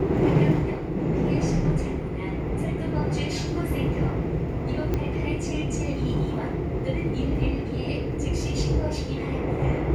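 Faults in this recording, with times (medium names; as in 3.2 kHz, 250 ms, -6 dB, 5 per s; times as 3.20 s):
4.94 s: pop -14 dBFS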